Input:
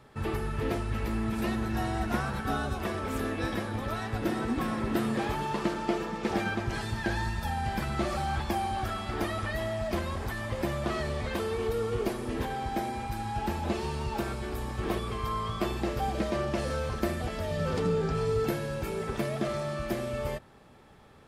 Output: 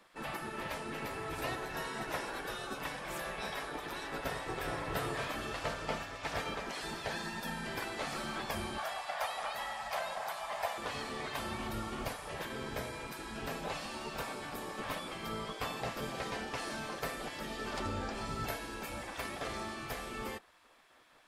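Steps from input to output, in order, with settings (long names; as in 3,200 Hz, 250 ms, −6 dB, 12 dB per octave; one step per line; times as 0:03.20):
gate on every frequency bin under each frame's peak −10 dB weak
0:08.78–0:10.78: low shelf with overshoot 470 Hz −12.5 dB, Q 3
level −1 dB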